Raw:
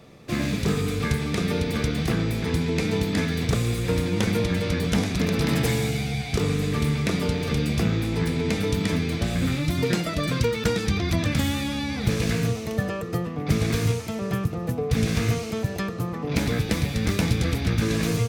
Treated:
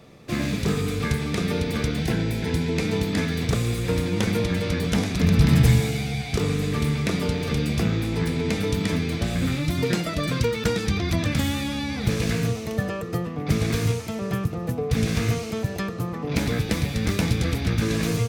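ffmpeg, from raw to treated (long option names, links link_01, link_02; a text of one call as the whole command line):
ffmpeg -i in.wav -filter_complex "[0:a]asettb=1/sr,asplit=3[link_01][link_02][link_03];[link_01]atrim=end=1.994[link_04];[link_02]atrim=start=1.99:end=2.74,asetpts=PTS-STARTPTS,afade=type=in:duration=0.004:curve=qsin,afade=type=out:start_time=0.746:duration=0.004:curve=qsin,asuperstop=centerf=1200:order=20:qfactor=6.1[link_05];[link_03]atrim=start=2.736[link_06];[link_04][link_05]acrossfade=duration=0.004:curve1=hsin:curve2=qsin[link_07];[link_07][link_06]acrossfade=duration=0.004:curve1=qsin:curve2=hsin,asplit=3[link_08][link_09][link_10];[link_08]afade=type=out:start_time=5.22:duration=0.02[link_11];[link_09]asubboost=boost=4.5:cutoff=170,afade=type=in:start_time=5.22:duration=0.02,afade=type=out:start_time=5.79:duration=0.02[link_12];[link_10]afade=type=in:start_time=5.79:duration=0.02[link_13];[link_11][link_12][link_13]amix=inputs=3:normalize=0" out.wav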